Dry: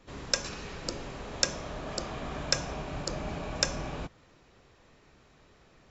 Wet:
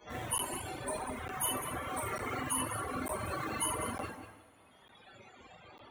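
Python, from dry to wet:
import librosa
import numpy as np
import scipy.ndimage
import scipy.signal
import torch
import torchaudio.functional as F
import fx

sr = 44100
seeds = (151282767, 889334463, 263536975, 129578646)

p1 = fx.pitch_bins(x, sr, semitones=10.5)
p2 = fx.spec_topn(p1, sr, count=64)
p3 = fx.schmitt(p2, sr, flips_db=-44.0)
p4 = p2 + F.gain(torch.from_numpy(p3), -6.0).numpy()
p5 = fx.highpass(p4, sr, hz=260.0, slope=6)
p6 = fx.peak_eq(p5, sr, hz=4800.0, db=-14.5, octaves=0.29)
p7 = p6 + fx.echo_single(p6, sr, ms=191, db=-7.5, dry=0)
p8 = fx.rev_double_slope(p7, sr, seeds[0], early_s=0.88, late_s=2.7, knee_db=-24, drr_db=-6.0)
p9 = fx.dereverb_blind(p8, sr, rt60_s=2.0)
p10 = fx.buffer_crackle(p9, sr, first_s=0.38, period_s=0.9, block=512, kind='zero')
y = fx.band_squash(p10, sr, depth_pct=40)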